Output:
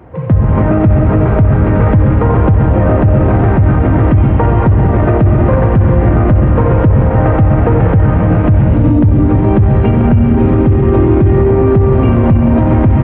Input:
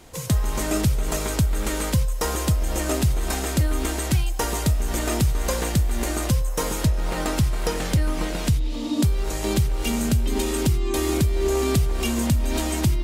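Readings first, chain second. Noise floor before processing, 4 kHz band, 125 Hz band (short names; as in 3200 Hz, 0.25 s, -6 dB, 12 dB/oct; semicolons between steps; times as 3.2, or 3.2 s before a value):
-28 dBFS, under -10 dB, +16.0 dB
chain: HPF 67 Hz 12 dB/oct; bell 100 Hz +10 dB 0.47 oct; AGC; Gaussian blur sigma 5.3 samples; on a send: feedback echo 0.13 s, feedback 55%, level -13 dB; on the sum: non-linear reverb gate 0.47 s flat, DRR -0.5 dB; maximiser +12.5 dB; gain -1 dB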